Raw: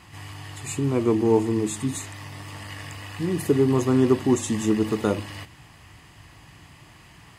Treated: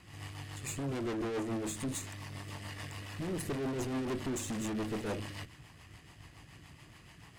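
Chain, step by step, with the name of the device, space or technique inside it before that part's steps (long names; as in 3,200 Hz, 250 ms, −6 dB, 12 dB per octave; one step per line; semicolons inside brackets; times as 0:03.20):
overdriven rotary cabinet (tube saturation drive 32 dB, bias 0.7; rotating-speaker cabinet horn 7 Hz)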